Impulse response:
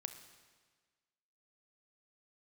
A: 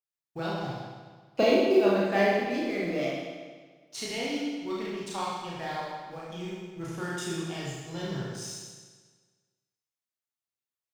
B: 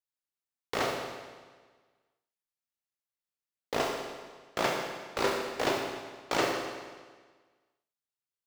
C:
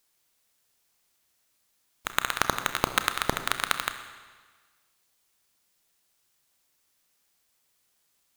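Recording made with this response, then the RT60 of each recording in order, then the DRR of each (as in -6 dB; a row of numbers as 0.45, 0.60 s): C; 1.5, 1.5, 1.5 s; -6.5, 0.0, 8.5 dB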